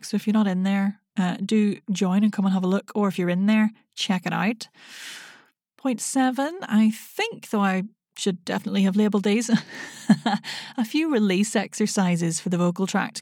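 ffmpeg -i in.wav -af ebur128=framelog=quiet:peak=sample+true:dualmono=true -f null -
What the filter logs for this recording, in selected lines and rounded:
Integrated loudness:
  I:         -20.5 LUFS
  Threshold: -30.9 LUFS
Loudness range:
  LRA:         2.8 LU
  Threshold: -41.1 LUFS
  LRA low:   -22.8 LUFS
  LRA high:  -20.0 LUFS
Sample peak:
  Peak:       -6.0 dBFS
True peak:
  Peak:       -5.9 dBFS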